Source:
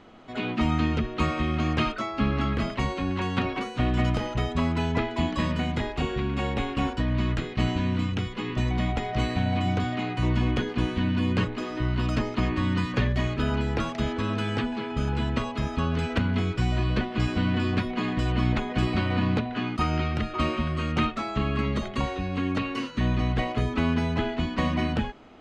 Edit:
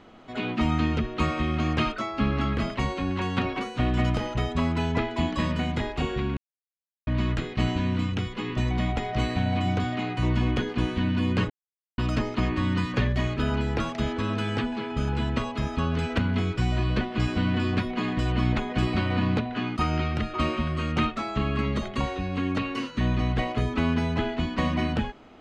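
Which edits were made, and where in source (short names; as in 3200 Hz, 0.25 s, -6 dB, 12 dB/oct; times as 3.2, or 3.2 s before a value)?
6.37–7.07 mute
11.5–11.98 mute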